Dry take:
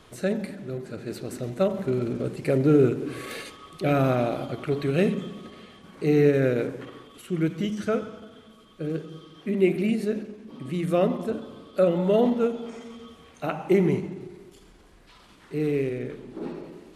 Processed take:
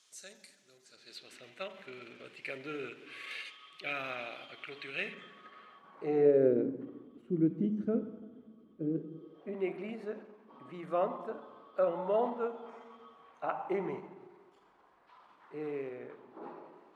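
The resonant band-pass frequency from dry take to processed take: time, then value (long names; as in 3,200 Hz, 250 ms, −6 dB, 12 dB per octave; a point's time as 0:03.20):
resonant band-pass, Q 2.1
0:00.83 6,400 Hz
0:01.39 2,600 Hz
0:04.93 2,600 Hz
0:06.10 820 Hz
0:06.65 270 Hz
0:09.15 270 Hz
0:09.60 960 Hz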